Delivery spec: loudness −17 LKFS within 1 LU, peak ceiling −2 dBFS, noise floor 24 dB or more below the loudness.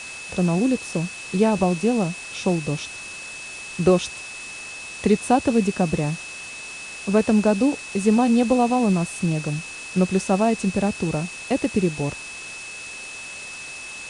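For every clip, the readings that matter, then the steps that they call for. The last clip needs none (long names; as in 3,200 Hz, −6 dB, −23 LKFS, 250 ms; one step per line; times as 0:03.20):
interfering tone 2,600 Hz; level of the tone −35 dBFS; background noise floor −36 dBFS; target noise floor −47 dBFS; integrated loudness −23.0 LKFS; sample peak −5.5 dBFS; target loudness −17.0 LKFS
→ notch filter 2,600 Hz, Q 30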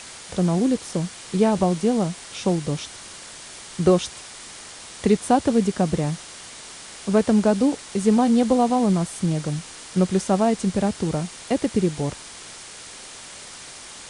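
interfering tone none found; background noise floor −41 dBFS; target noise floor −46 dBFS
→ noise reduction from a noise print 6 dB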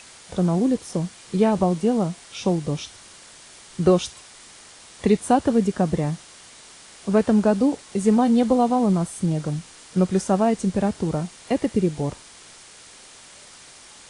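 background noise floor −46 dBFS; integrated loudness −22.0 LKFS; sample peak −6.0 dBFS; target loudness −17.0 LKFS
→ level +5 dB
brickwall limiter −2 dBFS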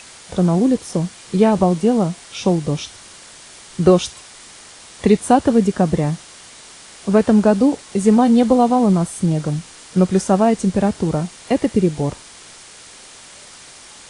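integrated loudness −17.0 LKFS; sample peak −2.0 dBFS; background noise floor −41 dBFS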